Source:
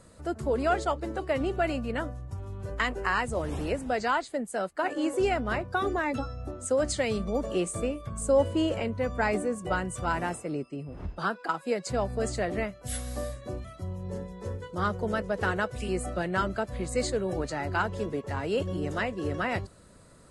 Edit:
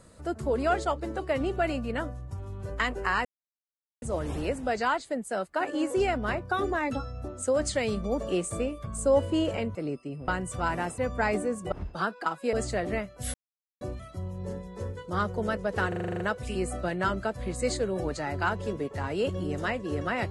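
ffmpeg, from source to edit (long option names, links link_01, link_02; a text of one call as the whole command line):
ffmpeg -i in.wav -filter_complex "[0:a]asplit=17[link_01][link_02][link_03][link_04][link_05][link_06][link_07][link_08][link_09][link_10][link_11][link_12][link_13][link_14][link_15][link_16][link_17];[link_01]atrim=end=3.25,asetpts=PTS-STARTPTS,afade=type=out:start_time=3.246:duration=0.004:curve=hsin,apad=pad_dur=0.77[link_18];[link_02]atrim=start=3.25:end=8.982,asetpts=PTS-STARTPTS,afade=type=in:duration=0.004:curve=hsin[link_19];[link_03]atrim=start=10.418:end=10.952[link_20];[link_04]atrim=start=9.718:end=10.422[link_21];[link_05]atrim=start=8.978:end=9.722[link_22];[link_06]atrim=start=10.948:end=11.762[link_23];[link_07]atrim=start=12.178:end=12.99,asetpts=PTS-STARTPTS,afade=type=out:start_time=0.808:duration=0.004:curve=hsin[link_24];[link_08]atrim=start=12.99:end=13.46,asetpts=PTS-STARTPTS,volume=0[link_25];[link_09]atrim=start=13.46:end=15.572,asetpts=PTS-STARTPTS,afade=type=in:duration=0.004:curve=hsin[link_26];[link_10]atrim=start=15.528:end=15.572[link_27];[link_11]atrim=start=15.528:end=15.572[link_28];[link_12]atrim=start=15.528:end=15.572[link_29];[link_13]atrim=start=15.528:end=15.572[link_30];[link_14]atrim=start=15.528:end=15.572[link_31];[link_15]atrim=start=15.528:end=15.572[link_32];[link_16]atrim=start=15.528:end=15.572[link_33];[link_17]atrim=start=15.528[link_34];[link_18][link_19]concat=n=2:v=0:a=1[link_35];[link_35][link_20]acrossfade=duration=0.004:curve1=hsin:curve2=hsin[link_36];[link_36][link_21]acrossfade=duration=0.004:curve1=hsin:curve2=hsin[link_37];[link_37][link_22]acrossfade=duration=0.004:curve1=hsin:curve2=hsin[link_38];[link_38][link_23]acrossfade=duration=0.004:curve1=hsin:curve2=hsin[link_39];[link_24][link_25][link_26]concat=n=3:v=0:a=1[link_40];[link_39][link_40]acrossfade=duration=0.004:curve1=hsin:curve2=hsin[link_41];[link_41][link_27]acrossfade=duration=0.004:curve1=hsin:curve2=hsin[link_42];[link_42][link_28]acrossfade=duration=0.004:curve1=hsin:curve2=hsin[link_43];[link_43][link_29]acrossfade=duration=0.004:curve1=hsin:curve2=hsin[link_44];[link_44][link_30]acrossfade=duration=0.004:curve1=hsin:curve2=hsin[link_45];[link_45][link_31]acrossfade=duration=0.004:curve1=hsin:curve2=hsin[link_46];[link_46][link_32]acrossfade=duration=0.004:curve1=hsin:curve2=hsin[link_47];[link_47][link_33]acrossfade=duration=0.004:curve1=hsin:curve2=hsin[link_48];[link_48][link_34]acrossfade=duration=0.004:curve1=hsin:curve2=hsin" out.wav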